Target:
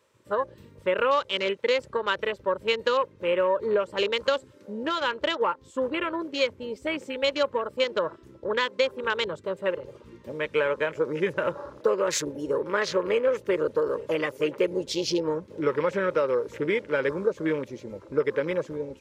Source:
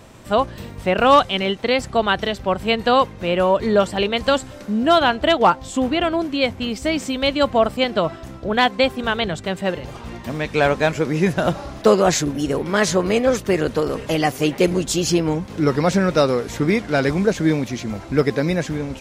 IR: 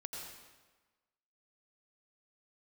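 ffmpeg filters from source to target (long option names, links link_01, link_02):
-af "highpass=85,afwtdn=0.0398,lowshelf=frequency=330:width_type=q:width=1.5:gain=-10.5,acompressor=threshold=-16dB:ratio=5,asuperstop=centerf=720:order=4:qfactor=2.8,volume=-3dB"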